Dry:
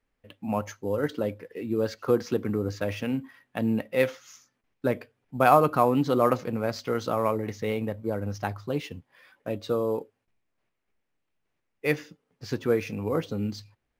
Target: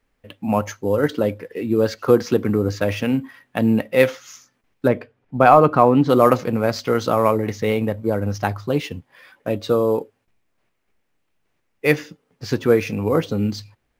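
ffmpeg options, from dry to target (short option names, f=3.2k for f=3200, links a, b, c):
-filter_complex "[0:a]asplit=3[a][b][c];[a]afade=t=out:st=4.87:d=0.02[d];[b]aemphasis=mode=reproduction:type=75kf,afade=t=in:st=4.87:d=0.02,afade=t=out:st=6.08:d=0.02[e];[c]afade=t=in:st=6.08:d=0.02[f];[d][e][f]amix=inputs=3:normalize=0,apsyclip=10dB,volume=-1.5dB"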